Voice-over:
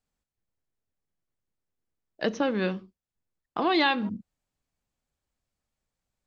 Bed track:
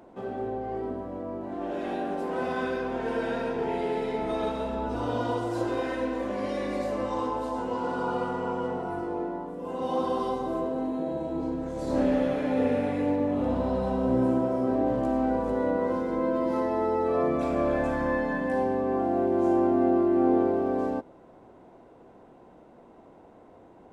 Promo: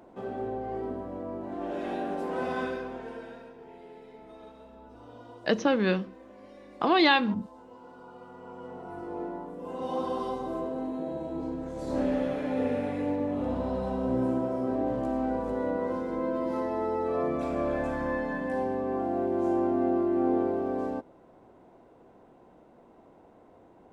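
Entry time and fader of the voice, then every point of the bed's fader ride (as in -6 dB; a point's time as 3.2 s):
3.25 s, +2.0 dB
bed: 2.61 s -1.5 dB
3.57 s -19.5 dB
8.15 s -19.5 dB
9.24 s -3.5 dB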